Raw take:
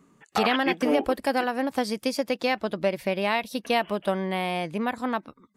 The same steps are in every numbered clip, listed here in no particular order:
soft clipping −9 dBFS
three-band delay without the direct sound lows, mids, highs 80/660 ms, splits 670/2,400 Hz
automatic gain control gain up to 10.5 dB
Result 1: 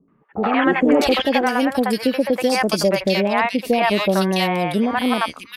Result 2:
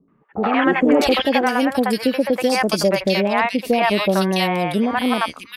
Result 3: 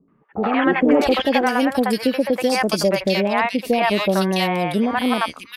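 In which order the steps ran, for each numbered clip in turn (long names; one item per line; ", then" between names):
soft clipping, then three-band delay without the direct sound, then automatic gain control
three-band delay without the direct sound, then soft clipping, then automatic gain control
soft clipping, then automatic gain control, then three-band delay without the direct sound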